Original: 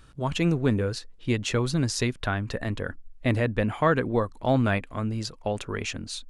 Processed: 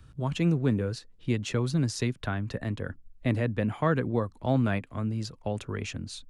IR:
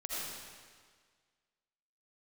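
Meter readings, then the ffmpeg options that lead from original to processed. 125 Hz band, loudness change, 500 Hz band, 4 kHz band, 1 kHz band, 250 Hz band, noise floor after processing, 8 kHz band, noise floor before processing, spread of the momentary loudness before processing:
-1.0 dB, -2.5 dB, -4.5 dB, -6.0 dB, -5.5 dB, -1.5 dB, -55 dBFS, -6.0 dB, -49 dBFS, 8 LU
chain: -filter_complex "[0:a]equalizer=f=100:w=0.62:g=12.5,acrossover=split=150|480|2700[s0][s1][s2][s3];[s0]acompressor=threshold=0.0251:ratio=6[s4];[s4][s1][s2][s3]amix=inputs=4:normalize=0,volume=0.501"

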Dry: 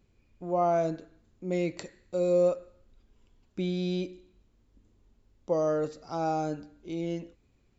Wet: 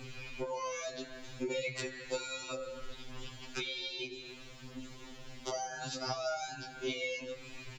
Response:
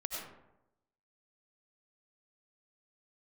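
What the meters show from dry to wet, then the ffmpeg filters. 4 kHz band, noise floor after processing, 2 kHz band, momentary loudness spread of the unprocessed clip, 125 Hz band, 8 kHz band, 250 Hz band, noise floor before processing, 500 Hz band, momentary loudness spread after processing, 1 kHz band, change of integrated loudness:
+8.0 dB, -51 dBFS, +6.5 dB, 16 LU, -12.0 dB, no reading, -13.0 dB, -67 dBFS, -10.5 dB, 12 LU, -8.5 dB, -9.5 dB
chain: -filter_complex "[0:a]afftfilt=real='re*lt(hypot(re,im),0.282)':imag='im*lt(hypot(re,im),0.282)':win_size=1024:overlap=0.75,equalizer=f=3100:w=0.35:g=13,acrossover=split=370|3000[s0][s1][s2];[s0]acompressor=threshold=0.01:ratio=4[s3];[s1]acompressor=threshold=0.00631:ratio=4[s4];[s2]acompressor=threshold=0.00398:ratio=4[s5];[s3][s4][s5]amix=inputs=3:normalize=0,asplit=2[s6][s7];[s7]alimiter=level_in=2.66:limit=0.0631:level=0:latency=1:release=11,volume=0.376,volume=1.06[s8];[s6][s8]amix=inputs=2:normalize=0,acompressor=threshold=0.00447:ratio=3,flanger=delay=7.8:depth=9.2:regen=25:speed=0.63:shape=sinusoidal,asplit=2[s9][s10];[s10]adelay=85,lowpass=f=3100:p=1,volume=0.141,asplit=2[s11][s12];[s12]adelay=85,lowpass=f=3100:p=1,volume=0.43,asplit=2[s13][s14];[s14]adelay=85,lowpass=f=3100:p=1,volume=0.43,asplit=2[s15][s16];[s16]adelay=85,lowpass=f=3100:p=1,volume=0.43[s17];[s9][s11][s13][s15][s17]amix=inputs=5:normalize=0,afftfilt=real='re*2.45*eq(mod(b,6),0)':imag='im*2.45*eq(mod(b,6),0)':win_size=2048:overlap=0.75,volume=7.08"

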